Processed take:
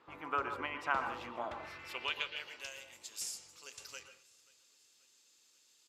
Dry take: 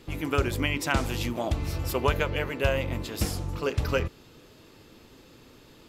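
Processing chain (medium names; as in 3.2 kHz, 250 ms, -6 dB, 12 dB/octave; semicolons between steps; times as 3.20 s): band-pass sweep 1.1 kHz -> 7.1 kHz, 1.37–2.77 s; feedback delay 534 ms, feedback 51%, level -23.5 dB; on a send at -8 dB: reverberation RT60 0.35 s, pre-delay 112 ms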